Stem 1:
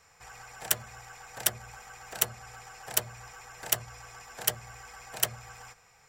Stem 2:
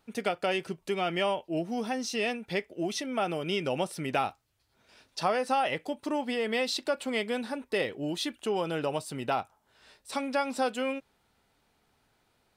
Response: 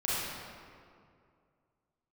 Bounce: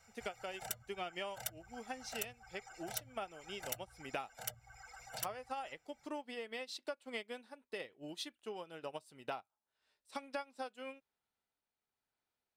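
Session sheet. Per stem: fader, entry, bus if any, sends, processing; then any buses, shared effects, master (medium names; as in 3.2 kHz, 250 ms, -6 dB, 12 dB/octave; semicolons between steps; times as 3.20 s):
-7.5 dB, 0.00 s, no send, reverb removal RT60 1 s; comb 1.4 ms, depth 87%
+3.0 dB, 0.00 s, no send, bass shelf 350 Hz -7 dB; tremolo 0.98 Hz, depth 32%; upward expansion 2.5:1, over -41 dBFS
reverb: none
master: compression 4:1, threshold -40 dBFS, peak gain reduction 15.5 dB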